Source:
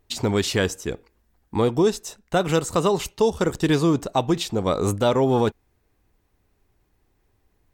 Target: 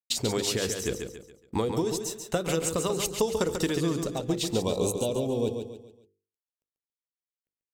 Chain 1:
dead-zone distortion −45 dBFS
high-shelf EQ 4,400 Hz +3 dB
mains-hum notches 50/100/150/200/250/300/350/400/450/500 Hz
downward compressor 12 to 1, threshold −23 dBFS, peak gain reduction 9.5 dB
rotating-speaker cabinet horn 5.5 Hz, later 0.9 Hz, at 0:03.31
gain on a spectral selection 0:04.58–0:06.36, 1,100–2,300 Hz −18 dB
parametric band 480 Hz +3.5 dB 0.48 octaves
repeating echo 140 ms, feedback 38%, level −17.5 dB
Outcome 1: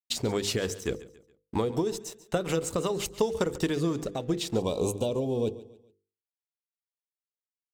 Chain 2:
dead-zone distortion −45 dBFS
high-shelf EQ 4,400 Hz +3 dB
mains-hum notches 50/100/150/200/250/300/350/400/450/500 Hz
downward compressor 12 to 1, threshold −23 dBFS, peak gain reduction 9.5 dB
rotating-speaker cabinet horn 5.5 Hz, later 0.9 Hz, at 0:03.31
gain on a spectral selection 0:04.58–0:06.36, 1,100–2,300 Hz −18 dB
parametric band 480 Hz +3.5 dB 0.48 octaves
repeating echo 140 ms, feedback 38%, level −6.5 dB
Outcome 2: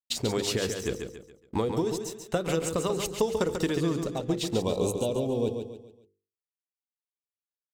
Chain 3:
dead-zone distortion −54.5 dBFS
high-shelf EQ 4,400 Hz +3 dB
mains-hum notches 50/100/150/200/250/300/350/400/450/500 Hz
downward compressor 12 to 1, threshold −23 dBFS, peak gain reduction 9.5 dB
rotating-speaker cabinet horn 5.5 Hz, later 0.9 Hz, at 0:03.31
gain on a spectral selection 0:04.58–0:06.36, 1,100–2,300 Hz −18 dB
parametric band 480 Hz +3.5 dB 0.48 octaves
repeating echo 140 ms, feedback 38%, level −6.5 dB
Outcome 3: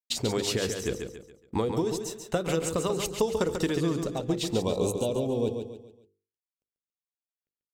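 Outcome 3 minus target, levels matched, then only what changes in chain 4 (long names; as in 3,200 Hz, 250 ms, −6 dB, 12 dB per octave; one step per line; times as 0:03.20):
8,000 Hz band −3.5 dB
change: high-shelf EQ 4,400 Hz +9.5 dB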